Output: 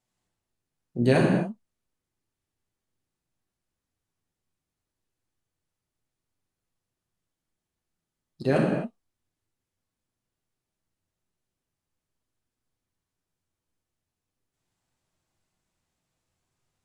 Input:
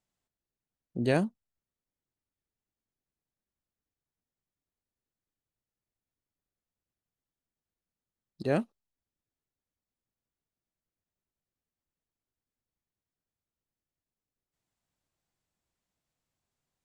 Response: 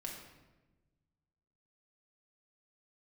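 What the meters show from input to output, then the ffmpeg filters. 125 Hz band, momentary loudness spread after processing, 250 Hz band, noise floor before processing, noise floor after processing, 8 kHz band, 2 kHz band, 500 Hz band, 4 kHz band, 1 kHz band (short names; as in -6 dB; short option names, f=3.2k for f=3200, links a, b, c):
+8.0 dB, 16 LU, +7.5 dB, under -85 dBFS, under -85 dBFS, n/a, +6.5 dB, +6.5 dB, +6.0 dB, +6.0 dB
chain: -filter_complex "[1:a]atrim=start_sample=2205,atrim=end_sample=6615,asetrate=23814,aresample=44100[a];[0:a][a]afir=irnorm=-1:irlink=0,volume=4.5dB"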